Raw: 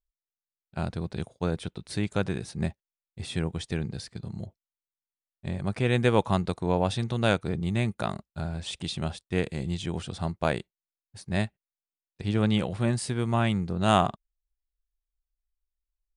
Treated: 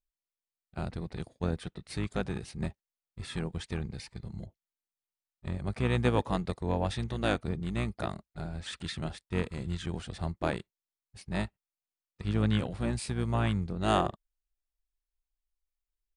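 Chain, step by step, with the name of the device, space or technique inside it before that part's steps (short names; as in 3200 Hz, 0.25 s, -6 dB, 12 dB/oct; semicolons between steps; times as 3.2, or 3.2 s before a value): octave pedal (harmoniser -12 st -5 dB); gain -5.5 dB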